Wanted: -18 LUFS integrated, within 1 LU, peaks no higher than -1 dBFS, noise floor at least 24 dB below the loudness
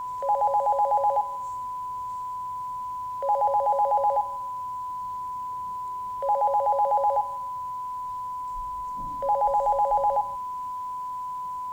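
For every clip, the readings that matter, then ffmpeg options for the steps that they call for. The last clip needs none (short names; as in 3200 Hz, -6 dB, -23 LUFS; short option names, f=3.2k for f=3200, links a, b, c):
steady tone 1000 Hz; tone level -30 dBFS; loudness -27.0 LUFS; peak -15.0 dBFS; loudness target -18.0 LUFS
-> -af "bandreject=f=1k:w=30"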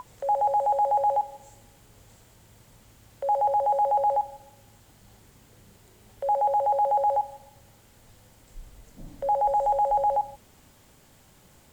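steady tone none; loudness -25.0 LUFS; peak -16.5 dBFS; loudness target -18.0 LUFS
-> -af "volume=7dB"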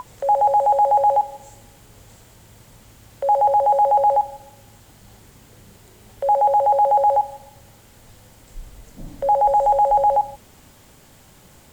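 loudness -18.0 LUFS; peak -9.5 dBFS; noise floor -50 dBFS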